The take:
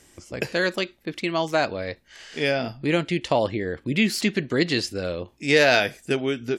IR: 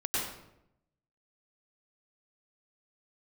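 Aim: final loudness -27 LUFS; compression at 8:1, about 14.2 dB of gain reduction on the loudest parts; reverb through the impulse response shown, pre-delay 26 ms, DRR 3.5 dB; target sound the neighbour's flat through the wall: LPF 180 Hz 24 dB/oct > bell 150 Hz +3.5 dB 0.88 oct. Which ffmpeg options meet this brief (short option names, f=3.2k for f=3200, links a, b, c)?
-filter_complex "[0:a]acompressor=threshold=-28dB:ratio=8,asplit=2[a][b];[1:a]atrim=start_sample=2205,adelay=26[c];[b][c]afir=irnorm=-1:irlink=0,volume=-11dB[d];[a][d]amix=inputs=2:normalize=0,lowpass=f=180:w=0.5412,lowpass=f=180:w=1.3066,equalizer=f=150:t=o:w=0.88:g=3.5,volume=13dB"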